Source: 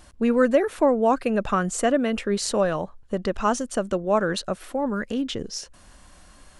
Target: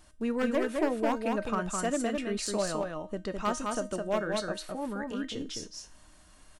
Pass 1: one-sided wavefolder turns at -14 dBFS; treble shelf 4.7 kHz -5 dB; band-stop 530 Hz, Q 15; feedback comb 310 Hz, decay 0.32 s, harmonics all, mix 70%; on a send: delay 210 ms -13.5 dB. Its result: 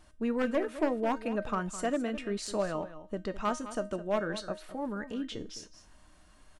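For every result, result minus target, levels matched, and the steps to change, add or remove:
echo-to-direct -10 dB; 8 kHz band -5.0 dB
change: delay 210 ms -3.5 dB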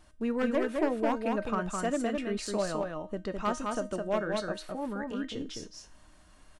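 8 kHz band -5.0 dB
change: treble shelf 4.7 kHz +2.5 dB

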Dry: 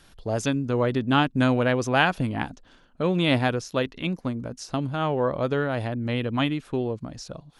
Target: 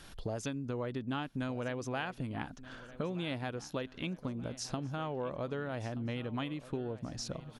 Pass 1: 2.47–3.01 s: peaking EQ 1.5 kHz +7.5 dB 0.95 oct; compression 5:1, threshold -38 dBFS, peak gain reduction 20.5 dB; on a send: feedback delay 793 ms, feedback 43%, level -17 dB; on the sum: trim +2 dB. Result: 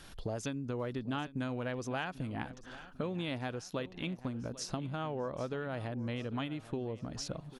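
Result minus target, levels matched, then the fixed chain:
echo 434 ms early
2.47–3.01 s: peaking EQ 1.5 kHz +7.5 dB 0.95 oct; compression 5:1, threshold -38 dBFS, peak gain reduction 20.5 dB; on a send: feedback delay 1227 ms, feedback 43%, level -17 dB; on the sum: trim +2 dB

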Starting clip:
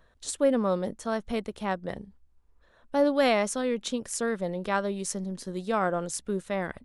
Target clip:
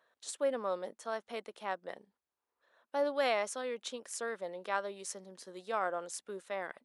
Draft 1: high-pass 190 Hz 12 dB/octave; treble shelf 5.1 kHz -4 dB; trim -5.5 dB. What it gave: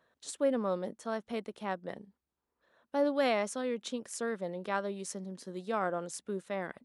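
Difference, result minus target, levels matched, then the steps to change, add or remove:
250 Hz band +8.0 dB
change: high-pass 500 Hz 12 dB/octave

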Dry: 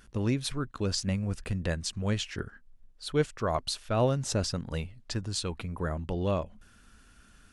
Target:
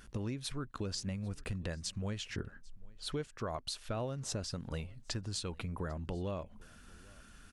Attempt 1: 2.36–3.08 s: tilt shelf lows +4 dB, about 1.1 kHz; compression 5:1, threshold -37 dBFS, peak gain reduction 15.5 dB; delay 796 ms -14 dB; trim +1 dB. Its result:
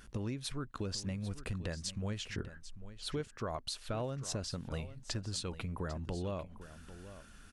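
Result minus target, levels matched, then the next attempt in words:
echo-to-direct +11 dB
2.36–3.08 s: tilt shelf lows +4 dB, about 1.1 kHz; compression 5:1, threshold -37 dBFS, peak gain reduction 15.5 dB; delay 796 ms -25 dB; trim +1 dB

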